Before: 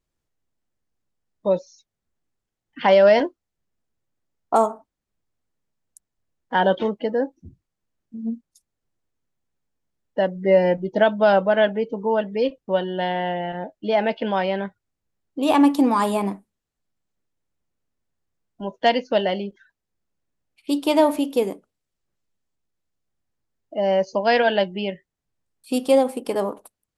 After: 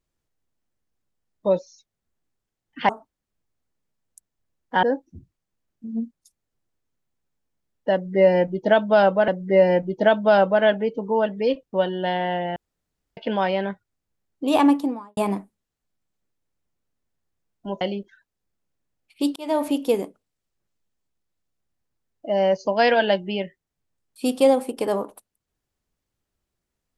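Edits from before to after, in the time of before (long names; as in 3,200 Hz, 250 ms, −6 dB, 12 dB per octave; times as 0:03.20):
0:02.89–0:04.68: remove
0:06.62–0:07.13: remove
0:10.23–0:11.58: repeat, 2 plays
0:13.51–0:14.12: fill with room tone
0:15.48–0:16.12: fade out and dull
0:18.76–0:19.29: remove
0:20.84–0:21.21: fade in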